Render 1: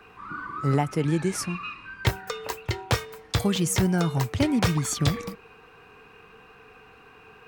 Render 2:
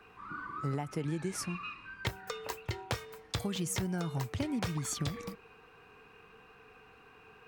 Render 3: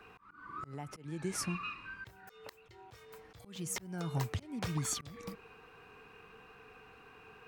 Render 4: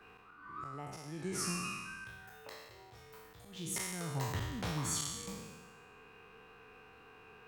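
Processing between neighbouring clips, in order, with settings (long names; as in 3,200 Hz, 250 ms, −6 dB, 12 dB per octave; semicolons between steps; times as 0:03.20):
downward compressor, threshold −24 dBFS, peak gain reduction 8 dB; level −6.5 dB
volume swells 386 ms; level +1 dB
peak hold with a decay on every bin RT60 1.31 s; level −4 dB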